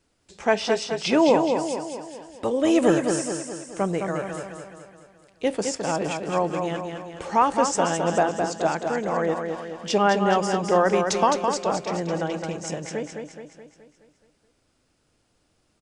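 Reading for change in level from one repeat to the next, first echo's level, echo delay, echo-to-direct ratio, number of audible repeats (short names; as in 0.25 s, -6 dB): -5.5 dB, -5.5 dB, 0.212 s, -4.0 dB, 6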